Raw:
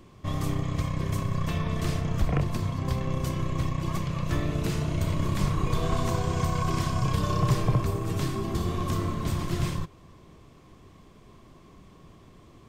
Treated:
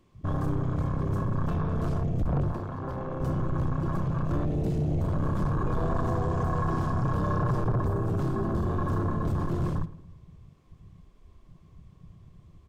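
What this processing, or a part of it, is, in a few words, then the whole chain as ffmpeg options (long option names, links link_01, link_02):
saturation between pre-emphasis and de-emphasis: -filter_complex "[0:a]highshelf=frequency=7100:gain=11.5,asoftclip=type=tanh:threshold=-27.5dB,highshelf=frequency=7100:gain=-11.5,asettb=1/sr,asplit=3[link_01][link_02][link_03];[link_01]atrim=end=2.524[link_04];[link_02]atrim=start=2.52:end=3.21,asetpts=PTS-STARTPTS,afade=type=in:duration=0.004:curve=qsin,afade=type=out:start_time=0.686:duration=0.004:curve=qsin,bass=frequency=250:gain=-9,treble=frequency=4000:gain=-6[link_05];[link_03]atrim=start=3.206[link_06];[link_04][link_05]acrossfade=duration=0.004:curve1=hsin:curve2=qsin[link_07];[link_07][link_06]acrossfade=duration=0.004:curve1=qsin:curve2=hsin,afwtdn=0.0141,asplit=2[link_08][link_09];[link_09]adelay=111,lowpass=frequency=2000:poles=1,volume=-17dB,asplit=2[link_10][link_11];[link_11]adelay=111,lowpass=frequency=2000:poles=1,volume=0.47,asplit=2[link_12][link_13];[link_13]adelay=111,lowpass=frequency=2000:poles=1,volume=0.47,asplit=2[link_14][link_15];[link_15]adelay=111,lowpass=frequency=2000:poles=1,volume=0.47[link_16];[link_08][link_10][link_12][link_14][link_16]amix=inputs=5:normalize=0,volume=5dB"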